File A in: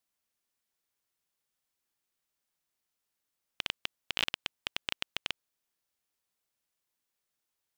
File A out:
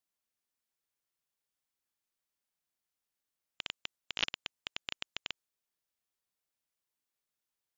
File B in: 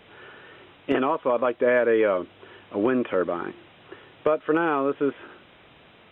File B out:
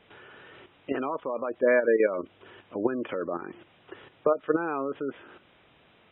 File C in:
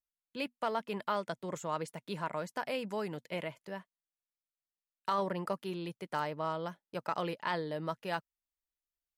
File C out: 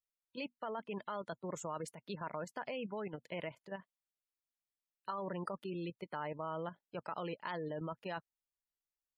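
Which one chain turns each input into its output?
level quantiser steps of 10 dB; spectral gate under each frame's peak -25 dB strong; dynamic EQ 7800 Hz, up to +3 dB, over -60 dBFS, Q 0.86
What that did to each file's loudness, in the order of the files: -4.0, -4.0, -5.5 LU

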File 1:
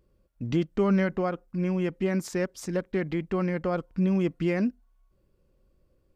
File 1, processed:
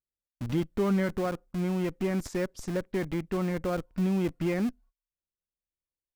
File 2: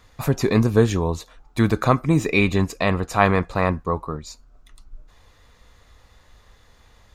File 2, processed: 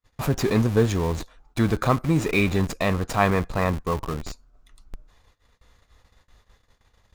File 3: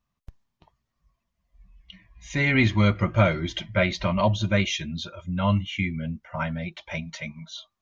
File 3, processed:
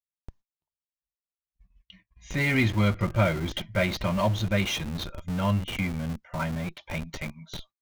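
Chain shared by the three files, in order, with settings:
gate -51 dBFS, range -32 dB; in parallel at -5.5 dB: Schmitt trigger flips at -31 dBFS; on the sum: gain -4.5 dB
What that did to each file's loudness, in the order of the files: -2.5, -2.5, -2.5 LU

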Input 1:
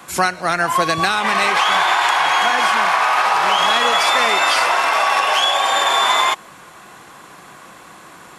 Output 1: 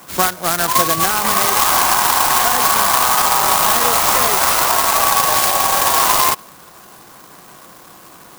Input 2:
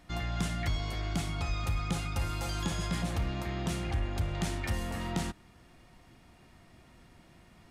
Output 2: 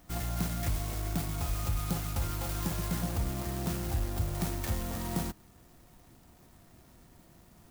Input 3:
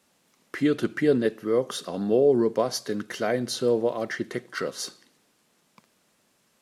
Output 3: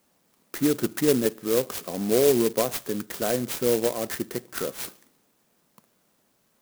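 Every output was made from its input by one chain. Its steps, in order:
dynamic EQ 1100 Hz, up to +4 dB, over -30 dBFS, Q 4.4; clock jitter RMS 0.11 ms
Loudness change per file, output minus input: +2.5, 0.0, +0.5 LU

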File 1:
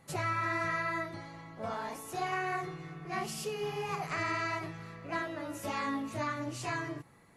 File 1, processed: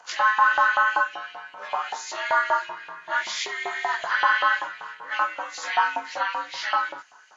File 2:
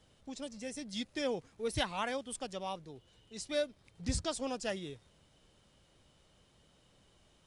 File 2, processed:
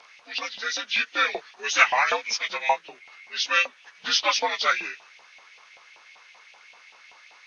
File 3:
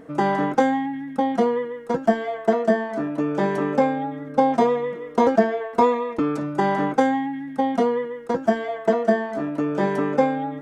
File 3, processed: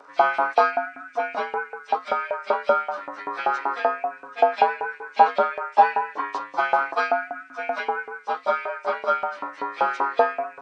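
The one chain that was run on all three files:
inharmonic rescaling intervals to 87%; LFO high-pass saw up 5.2 Hz 790–2700 Hz; AAC 96 kbps 22050 Hz; match loudness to -24 LUFS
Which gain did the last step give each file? +12.0, +18.5, +5.0 dB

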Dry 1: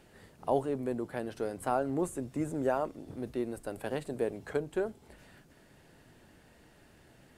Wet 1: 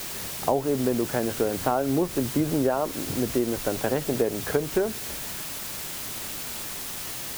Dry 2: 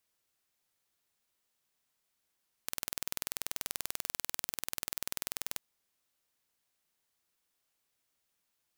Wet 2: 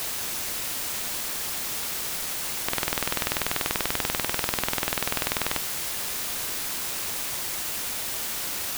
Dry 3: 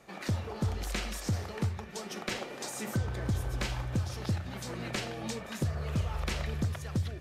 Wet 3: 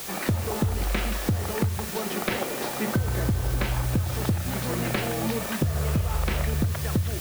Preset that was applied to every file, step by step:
air absorption 280 m; requantised 8-bit, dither triangular; compressor 6:1, threshold -33 dBFS; match loudness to -27 LUFS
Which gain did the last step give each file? +13.5, +17.5, +12.0 dB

